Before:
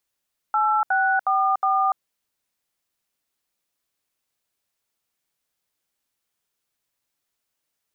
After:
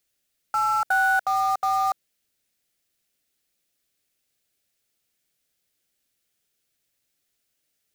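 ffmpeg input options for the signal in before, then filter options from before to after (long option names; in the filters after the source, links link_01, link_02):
-f lavfi -i "aevalsrc='0.1*clip(min(mod(t,0.363),0.291-mod(t,0.363))/0.002,0,1)*(eq(floor(t/0.363),0)*(sin(2*PI*852*mod(t,0.363))+sin(2*PI*1336*mod(t,0.363)))+eq(floor(t/0.363),1)*(sin(2*PI*770*mod(t,0.363))+sin(2*PI*1477*mod(t,0.363)))+eq(floor(t/0.363),2)*(sin(2*PI*770*mod(t,0.363))+sin(2*PI*1209*mod(t,0.363)))+eq(floor(t/0.363),3)*(sin(2*PI*770*mod(t,0.363))+sin(2*PI*1209*mod(t,0.363))))':duration=1.452:sample_rate=44100"
-filter_complex "[0:a]equalizer=frequency=1000:width_type=o:width=0.73:gain=-12,asplit=2[link_01][link_02];[link_02]acrusher=bits=2:mode=log:mix=0:aa=0.000001,volume=-4dB[link_03];[link_01][link_03]amix=inputs=2:normalize=0"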